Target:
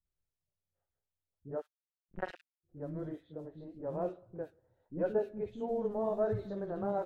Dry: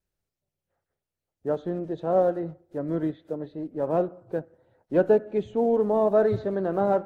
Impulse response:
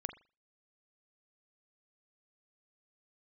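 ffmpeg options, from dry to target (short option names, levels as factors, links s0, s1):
-filter_complex "[0:a]flanger=delay=9.4:depth=6.4:regen=-59:speed=1.6:shape=triangular,asplit=3[s0][s1][s2];[s0]afade=t=out:st=1.55:d=0.02[s3];[s1]acrusher=bits=2:mix=0:aa=0.5,afade=t=in:st=1.55:d=0.02,afade=t=out:st=2.63:d=0.02[s4];[s2]afade=t=in:st=2.63:d=0.02[s5];[s3][s4][s5]amix=inputs=3:normalize=0,lowshelf=f=87:g=11.5,acrossover=split=280|2200[s6][s7][s8];[s7]adelay=50[s9];[s8]adelay=110[s10];[s6][s9][s10]amix=inputs=3:normalize=0,volume=0.447"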